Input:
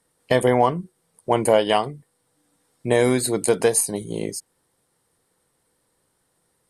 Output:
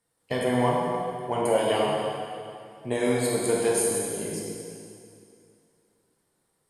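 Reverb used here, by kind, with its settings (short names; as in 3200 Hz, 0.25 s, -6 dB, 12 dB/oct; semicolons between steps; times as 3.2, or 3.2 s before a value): plate-style reverb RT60 2.5 s, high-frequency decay 0.9×, DRR -5 dB; gain -10.5 dB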